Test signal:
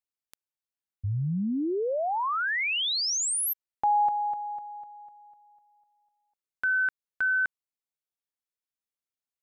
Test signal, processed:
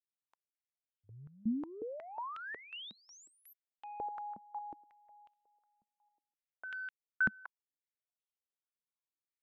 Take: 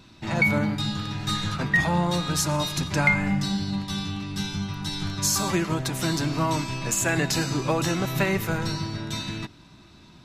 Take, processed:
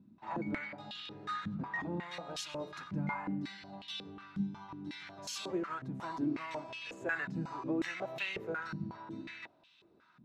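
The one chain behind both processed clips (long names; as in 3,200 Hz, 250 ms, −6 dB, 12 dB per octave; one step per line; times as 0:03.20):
soft clipping −11 dBFS
band-pass on a step sequencer 5.5 Hz 210–3,000 Hz
level −1 dB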